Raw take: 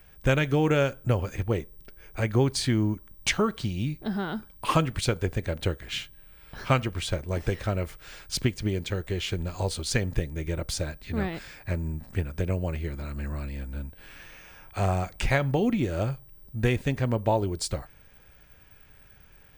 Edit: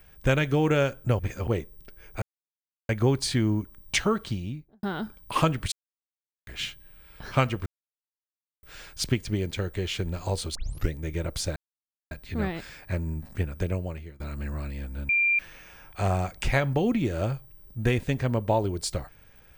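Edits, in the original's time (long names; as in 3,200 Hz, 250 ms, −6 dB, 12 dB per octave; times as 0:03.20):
0:01.19–0:01.47: reverse
0:02.22: splice in silence 0.67 s
0:03.55–0:04.16: fade out and dull
0:05.05–0:05.80: silence
0:06.99–0:07.96: silence
0:09.88: tape start 0.36 s
0:10.89: splice in silence 0.55 s
0:12.44–0:12.98: fade out, to −21.5 dB
0:13.87–0:14.17: beep over 2,380 Hz −19.5 dBFS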